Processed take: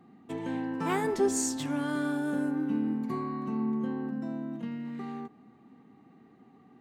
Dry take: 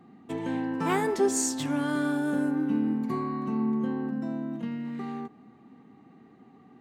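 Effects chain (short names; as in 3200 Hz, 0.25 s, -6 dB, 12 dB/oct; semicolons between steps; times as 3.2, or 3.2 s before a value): 1.04–1.57 low shelf 120 Hz +11.5 dB; gain -3 dB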